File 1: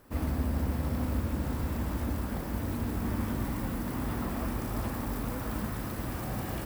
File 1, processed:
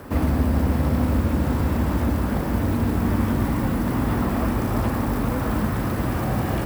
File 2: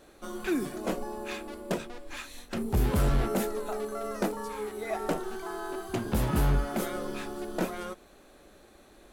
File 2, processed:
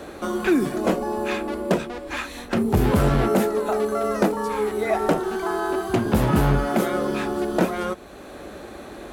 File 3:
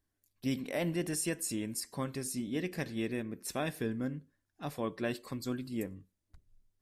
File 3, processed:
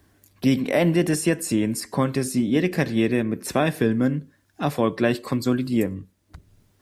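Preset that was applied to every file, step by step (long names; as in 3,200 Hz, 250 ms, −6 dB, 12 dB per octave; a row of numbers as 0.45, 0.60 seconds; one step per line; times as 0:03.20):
high-pass filter 54 Hz
high-shelf EQ 3,300 Hz −7 dB
multiband upward and downward compressor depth 40%
loudness normalisation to −23 LKFS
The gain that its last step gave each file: +11.0, +10.5, +14.5 decibels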